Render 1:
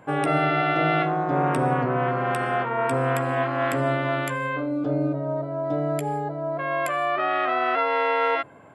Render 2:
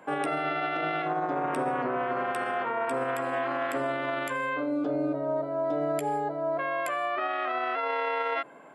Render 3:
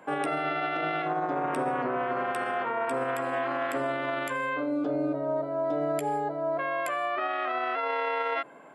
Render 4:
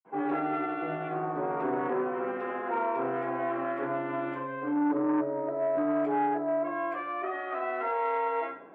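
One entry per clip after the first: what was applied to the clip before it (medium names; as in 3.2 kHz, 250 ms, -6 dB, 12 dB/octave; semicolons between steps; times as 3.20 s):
Bessel high-pass 270 Hz, order 8; peak limiter -20.5 dBFS, peak gain reduction 11 dB
no audible change
band-pass 220–2100 Hz; reverberation, pre-delay 47 ms; transformer saturation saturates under 600 Hz; trim +6.5 dB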